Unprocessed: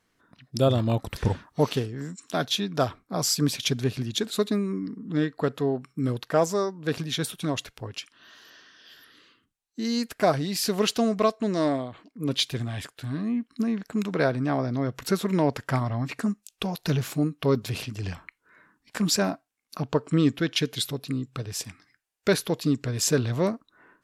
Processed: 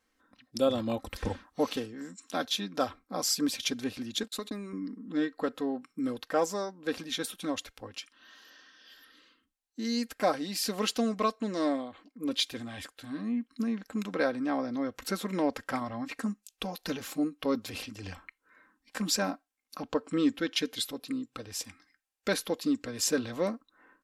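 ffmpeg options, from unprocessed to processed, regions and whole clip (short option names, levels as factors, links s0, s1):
-filter_complex "[0:a]asettb=1/sr,asplit=3[s0][s1][s2];[s0]atrim=end=4.234[s3];[s1]atrim=start=4.23:end=4.73,asetpts=PTS-STARTPTS,afade=t=in:d=0.004:c=qsin,afade=t=out:st=0.496:d=0.004:c=qsin,agate=range=0.0141:threshold=0.0158:ratio=16:release=100:detection=peak,equalizer=f=170:w=3:g=-8.5,acompressor=threshold=0.0501:ratio=3:attack=3.2:release=140:knee=1:detection=peak[s4];[s2]atrim=start=4.726[s5];[s3][s4]acrossfade=d=0.004:c1=hsin:c2=qsin[s6];[s6][s5]acrossfade=d=0.004:c1=qsin:c2=hsin,equalizer=f=140:t=o:w=0.56:g=-15,aecho=1:1:3.8:0.51,volume=0.562"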